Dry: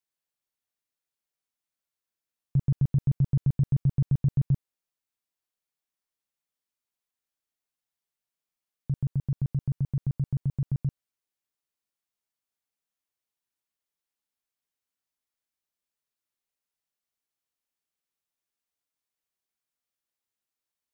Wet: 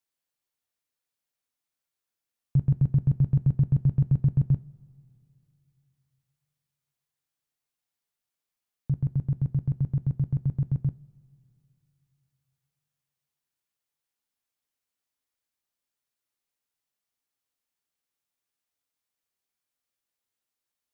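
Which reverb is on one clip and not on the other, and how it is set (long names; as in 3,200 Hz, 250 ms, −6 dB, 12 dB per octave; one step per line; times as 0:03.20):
coupled-rooms reverb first 0.23 s, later 2.8 s, from −21 dB, DRR 12.5 dB
level +1.5 dB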